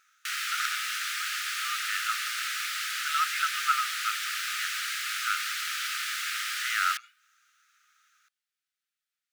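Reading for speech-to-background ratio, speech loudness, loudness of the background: −2.5 dB, −33.0 LKFS, −30.5 LKFS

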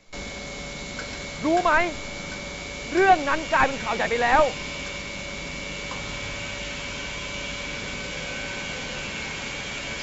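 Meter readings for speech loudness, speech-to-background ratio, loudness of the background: −22.0 LKFS, 9.5 dB, −31.5 LKFS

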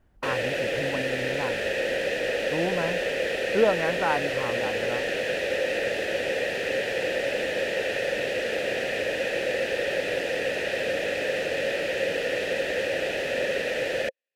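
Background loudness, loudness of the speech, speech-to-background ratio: −27.0 LKFS, −30.5 LKFS, −3.5 dB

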